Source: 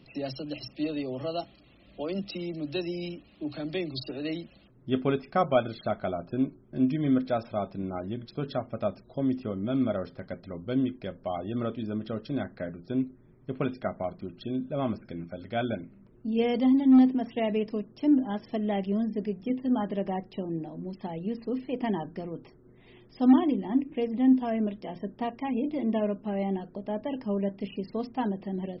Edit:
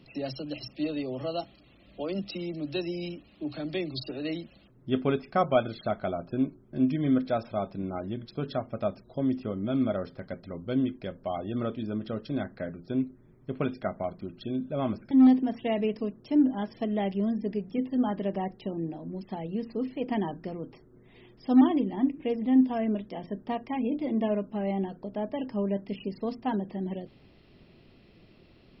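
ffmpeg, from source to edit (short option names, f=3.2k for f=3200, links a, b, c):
-filter_complex "[0:a]asplit=2[a][b];[a]atrim=end=15.112[c];[b]atrim=start=16.828[d];[c][d]acrossfade=d=0.004:c1=hsin:c2=hsin"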